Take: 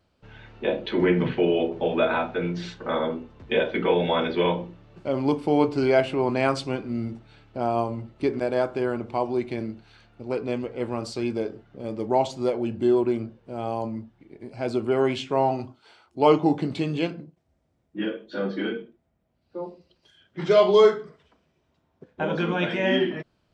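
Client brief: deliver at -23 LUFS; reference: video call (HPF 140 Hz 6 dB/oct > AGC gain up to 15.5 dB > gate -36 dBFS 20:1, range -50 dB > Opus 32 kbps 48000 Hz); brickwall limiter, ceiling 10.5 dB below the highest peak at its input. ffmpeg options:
-af "alimiter=limit=-16.5dB:level=0:latency=1,highpass=f=140:p=1,dynaudnorm=m=15.5dB,agate=range=-50dB:threshold=-36dB:ratio=20,volume=-2dB" -ar 48000 -c:a libopus -b:a 32k

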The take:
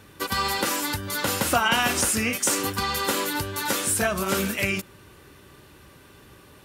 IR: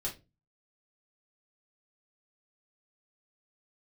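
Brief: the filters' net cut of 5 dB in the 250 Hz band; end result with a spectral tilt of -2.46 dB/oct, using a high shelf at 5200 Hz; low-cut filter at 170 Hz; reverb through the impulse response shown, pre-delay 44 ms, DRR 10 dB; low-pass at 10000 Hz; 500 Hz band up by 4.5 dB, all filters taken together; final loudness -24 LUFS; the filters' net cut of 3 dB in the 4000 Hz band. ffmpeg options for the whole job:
-filter_complex "[0:a]highpass=170,lowpass=10k,equalizer=f=250:t=o:g=-8,equalizer=f=500:t=o:g=8,equalizer=f=4k:t=o:g=-6,highshelf=f=5.2k:g=4,asplit=2[a][b];[1:a]atrim=start_sample=2205,adelay=44[c];[b][c]afir=irnorm=-1:irlink=0,volume=-11.5dB[d];[a][d]amix=inputs=2:normalize=0,volume=-0.5dB"

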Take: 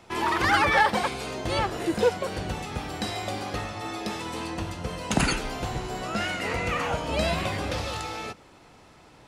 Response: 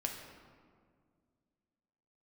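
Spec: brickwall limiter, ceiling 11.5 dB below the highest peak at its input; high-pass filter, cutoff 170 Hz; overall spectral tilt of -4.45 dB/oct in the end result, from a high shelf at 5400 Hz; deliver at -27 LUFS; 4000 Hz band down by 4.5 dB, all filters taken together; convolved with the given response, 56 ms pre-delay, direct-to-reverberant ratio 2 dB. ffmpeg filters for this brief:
-filter_complex "[0:a]highpass=170,equalizer=f=4k:t=o:g=-4,highshelf=f=5.4k:g=-5,alimiter=limit=-22dB:level=0:latency=1,asplit=2[a][b];[1:a]atrim=start_sample=2205,adelay=56[c];[b][c]afir=irnorm=-1:irlink=0,volume=-3.5dB[d];[a][d]amix=inputs=2:normalize=0,volume=3.5dB"

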